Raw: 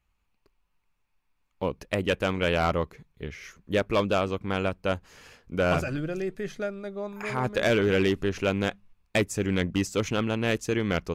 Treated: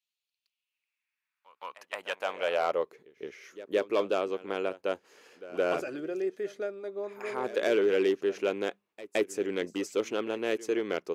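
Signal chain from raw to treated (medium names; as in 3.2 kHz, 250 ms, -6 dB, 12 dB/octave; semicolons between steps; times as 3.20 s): high-pass sweep 3.7 kHz -> 380 Hz, 0.36–3.01 s; pre-echo 168 ms -17 dB; trim -7 dB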